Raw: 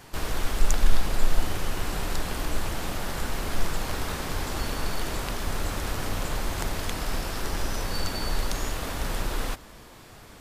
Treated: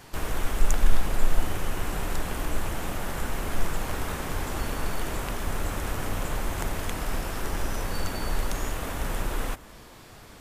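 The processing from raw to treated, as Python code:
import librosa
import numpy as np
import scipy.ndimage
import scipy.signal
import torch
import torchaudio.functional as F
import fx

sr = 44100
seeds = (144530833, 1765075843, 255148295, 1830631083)

y = fx.dynamic_eq(x, sr, hz=4500.0, q=1.6, threshold_db=-52.0, ratio=4.0, max_db=-7)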